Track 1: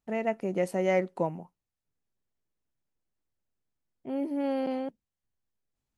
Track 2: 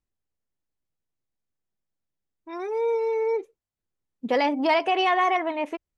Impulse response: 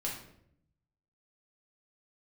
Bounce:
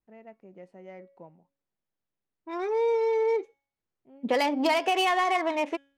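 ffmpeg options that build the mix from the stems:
-filter_complex "[0:a]volume=-19dB[link_01];[1:a]lowshelf=frequency=130:gain=-9,acompressor=threshold=-23dB:ratio=6,volume=2dB[link_02];[link_01][link_02]amix=inputs=2:normalize=0,bandreject=frequency=277.6:width_type=h:width=4,bandreject=frequency=555.2:width_type=h:width=4,bandreject=frequency=832.8:width_type=h:width=4,bandreject=frequency=1110.4:width_type=h:width=4,bandreject=frequency=1388:width_type=h:width=4,bandreject=frequency=1665.6:width_type=h:width=4,bandreject=frequency=1943.2:width_type=h:width=4,bandreject=frequency=2220.8:width_type=h:width=4,bandreject=frequency=2498.4:width_type=h:width=4,bandreject=frequency=2776:width_type=h:width=4,bandreject=frequency=3053.6:width_type=h:width=4,bandreject=frequency=3331.2:width_type=h:width=4,bandreject=frequency=3608.8:width_type=h:width=4,bandreject=frequency=3886.4:width_type=h:width=4,bandreject=frequency=4164:width_type=h:width=4,bandreject=frequency=4441.6:width_type=h:width=4,bandreject=frequency=4719.2:width_type=h:width=4,bandreject=frequency=4996.8:width_type=h:width=4,bandreject=frequency=5274.4:width_type=h:width=4,bandreject=frequency=5552:width_type=h:width=4,bandreject=frequency=5829.6:width_type=h:width=4,bandreject=frequency=6107.2:width_type=h:width=4,bandreject=frequency=6384.8:width_type=h:width=4,bandreject=frequency=6662.4:width_type=h:width=4,bandreject=frequency=6940:width_type=h:width=4,bandreject=frequency=7217.6:width_type=h:width=4,bandreject=frequency=7495.2:width_type=h:width=4,bandreject=frequency=7772.8:width_type=h:width=4,bandreject=frequency=8050.4:width_type=h:width=4,bandreject=frequency=8328:width_type=h:width=4,bandreject=frequency=8605.6:width_type=h:width=4,bandreject=frequency=8883.2:width_type=h:width=4,bandreject=frequency=9160.8:width_type=h:width=4,bandreject=frequency=9438.4:width_type=h:width=4,bandreject=frequency=9716:width_type=h:width=4,adynamicsmooth=sensitivity=7:basefreq=3800,adynamicequalizer=threshold=0.00708:dfrequency=3300:dqfactor=0.7:tfrequency=3300:tqfactor=0.7:attack=5:release=100:ratio=0.375:range=3.5:mode=boostabove:tftype=highshelf"

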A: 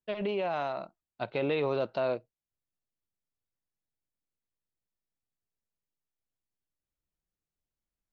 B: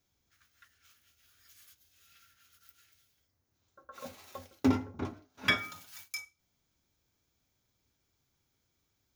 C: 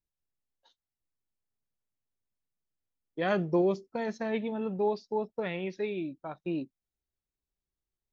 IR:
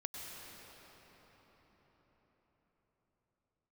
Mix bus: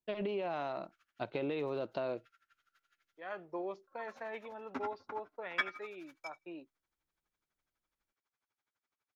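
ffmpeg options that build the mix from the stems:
-filter_complex "[0:a]volume=-3dB[link_01];[1:a]asoftclip=type=tanh:threshold=-16.5dB,bandpass=frequency=1300:width_type=q:width=1.3:csg=0,aeval=exprs='val(0)*pow(10,-21*(0.5-0.5*cos(2*PI*12*n/s))/20)':channel_layout=same,adelay=100,volume=2.5dB[link_02];[2:a]acrossover=split=590 2500:gain=0.0794 1 0.224[link_03][link_04][link_05];[link_03][link_04][link_05]amix=inputs=3:normalize=0,volume=-4dB,afade=type=in:start_time=3.18:duration=0.5:silence=0.316228[link_06];[link_01][link_06]amix=inputs=2:normalize=0,equalizer=frequency=320:width_type=o:width=0.6:gain=6,acompressor=threshold=-33dB:ratio=6,volume=0dB[link_07];[link_02][link_07]amix=inputs=2:normalize=0"

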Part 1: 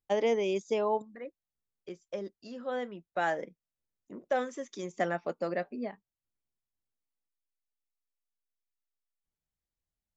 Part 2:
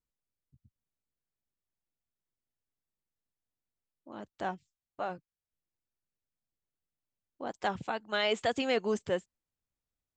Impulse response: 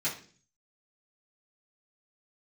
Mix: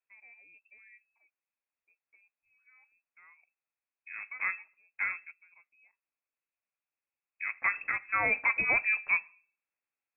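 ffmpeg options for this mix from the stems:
-filter_complex "[0:a]volume=-15dB[link_01];[1:a]highpass=190,volume=2.5dB,asplit=3[link_02][link_03][link_04];[link_03]volume=-18.5dB[link_05];[link_04]apad=whole_len=448090[link_06];[link_01][link_06]sidechaingate=range=-14dB:threshold=-58dB:ratio=16:detection=peak[link_07];[2:a]atrim=start_sample=2205[link_08];[link_05][link_08]afir=irnorm=-1:irlink=0[link_09];[link_07][link_02][link_09]amix=inputs=3:normalize=0,lowpass=frequency=2400:width_type=q:width=0.5098,lowpass=frequency=2400:width_type=q:width=0.6013,lowpass=frequency=2400:width_type=q:width=0.9,lowpass=frequency=2400:width_type=q:width=2.563,afreqshift=-2800"

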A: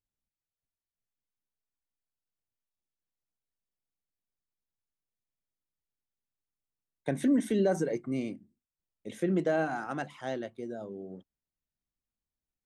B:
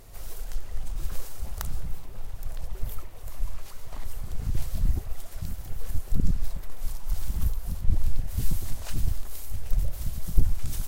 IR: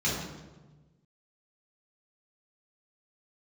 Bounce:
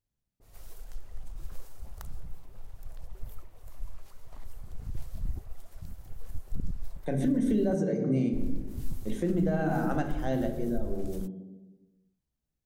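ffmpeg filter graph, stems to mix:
-filter_complex "[0:a]lowshelf=frequency=480:gain=6.5,volume=0.5dB,asplit=2[link_01][link_02];[link_02]volume=-15dB[link_03];[1:a]adynamicequalizer=threshold=0.00126:dfrequency=1600:dqfactor=0.7:tfrequency=1600:tqfactor=0.7:attack=5:release=100:ratio=0.375:range=2.5:mode=cutabove:tftype=highshelf,adelay=400,volume=-9dB,asplit=3[link_04][link_05][link_06];[link_04]atrim=end=7.75,asetpts=PTS-STARTPTS,afade=type=out:start_time=7.746:duration=0.004:curve=hsin[link_07];[link_05]atrim=start=7.75:end=8.33,asetpts=PTS-STARTPTS,volume=0[link_08];[link_06]atrim=start=8.33,asetpts=PTS-STARTPTS,afade=type=in:duration=0.004:curve=hsin[link_09];[link_07][link_08][link_09]concat=n=3:v=0:a=1[link_10];[2:a]atrim=start_sample=2205[link_11];[link_03][link_11]afir=irnorm=-1:irlink=0[link_12];[link_01][link_10][link_12]amix=inputs=3:normalize=0,alimiter=limit=-18.5dB:level=0:latency=1:release=179"

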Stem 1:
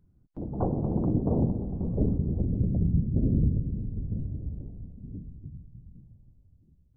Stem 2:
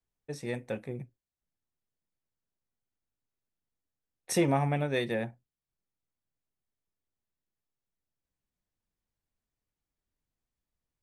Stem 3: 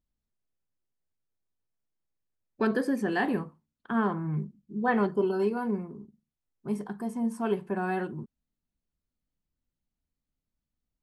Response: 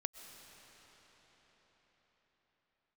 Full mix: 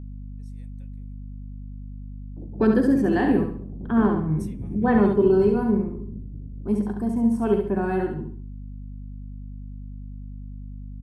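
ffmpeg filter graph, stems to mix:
-filter_complex "[0:a]adelay=2000,volume=-15dB[link_01];[1:a]aderivative,adelay=100,volume=-16dB,asplit=2[link_02][link_03];[link_03]volume=-24dB[link_04];[2:a]volume=-2dB,asplit=2[link_05][link_06];[link_06]volume=-5dB[link_07];[link_04][link_07]amix=inputs=2:normalize=0,aecho=0:1:69|138|207|276|345:1|0.35|0.122|0.0429|0.015[link_08];[link_01][link_02][link_05][link_08]amix=inputs=4:normalize=0,equalizer=frequency=280:width_type=o:width=2.5:gain=10,aeval=exprs='val(0)+0.0178*(sin(2*PI*50*n/s)+sin(2*PI*2*50*n/s)/2+sin(2*PI*3*50*n/s)/3+sin(2*PI*4*50*n/s)/4+sin(2*PI*5*50*n/s)/5)':channel_layout=same"

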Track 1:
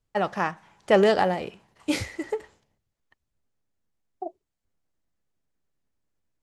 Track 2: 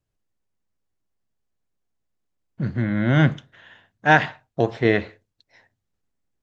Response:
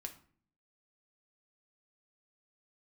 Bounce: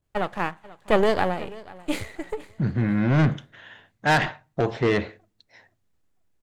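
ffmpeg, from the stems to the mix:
-filter_complex "[0:a]aeval=exprs='if(lt(val(0),0),0.251*val(0),val(0))':channel_layout=same,equalizer=frequency=5500:width_type=o:width=0.38:gain=-10.5,volume=1.5dB,asplit=2[link_01][link_02];[link_02]volume=-20dB[link_03];[1:a]asoftclip=type=tanh:threshold=-17.5dB,adynamicequalizer=threshold=0.0158:dfrequency=1600:dqfactor=0.7:tfrequency=1600:tqfactor=0.7:attack=5:release=100:ratio=0.375:range=2:mode=cutabove:tftype=highshelf,volume=2dB,asplit=2[link_04][link_05];[link_05]volume=-18dB[link_06];[2:a]atrim=start_sample=2205[link_07];[link_06][link_07]afir=irnorm=-1:irlink=0[link_08];[link_03]aecho=0:1:487|974|1461|1948|2435:1|0.32|0.102|0.0328|0.0105[link_09];[link_01][link_04][link_08][link_09]amix=inputs=4:normalize=0"

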